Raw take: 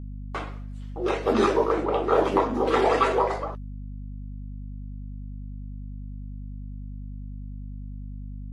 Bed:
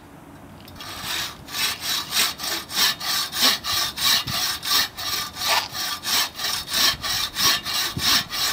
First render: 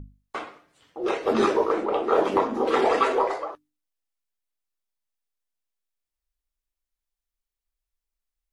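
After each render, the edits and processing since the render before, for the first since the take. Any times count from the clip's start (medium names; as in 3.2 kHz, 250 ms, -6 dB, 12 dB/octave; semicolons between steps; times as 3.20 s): hum notches 50/100/150/200/250/300 Hz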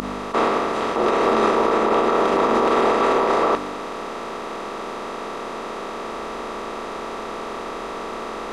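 spectral levelling over time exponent 0.2; peak limiter -9 dBFS, peak gain reduction 8 dB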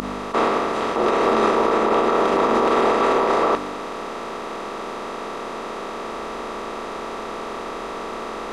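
no audible change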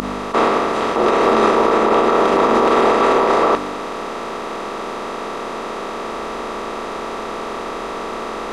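trim +4 dB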